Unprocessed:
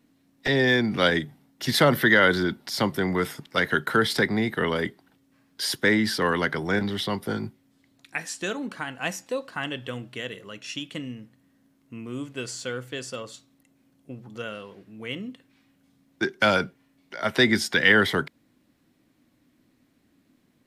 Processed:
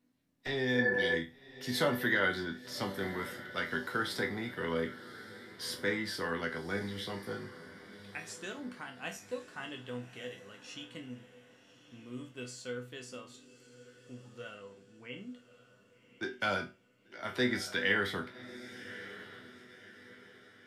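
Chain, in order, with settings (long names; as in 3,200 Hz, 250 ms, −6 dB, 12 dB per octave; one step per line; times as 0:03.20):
0:00.77–0:01.12: healed spectral selection 330–1,800 Hz before
0:14.54–0:15.18: Butterworth low-pass 3,100 Hz 48 dB per octave
resonators tuned to a chord E2 minor, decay 0.29 s
feedback delay with all-pass diffusion 1,130 ms, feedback 41%, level −14.5 dB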